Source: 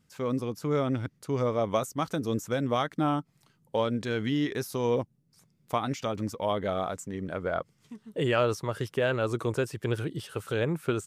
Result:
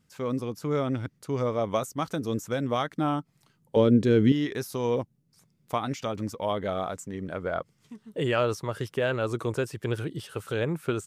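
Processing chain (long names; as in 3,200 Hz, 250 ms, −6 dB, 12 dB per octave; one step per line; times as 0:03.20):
0:03.76–0:04.32: low shelf with overshoot 560 Hz +9.5 dB, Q 1.5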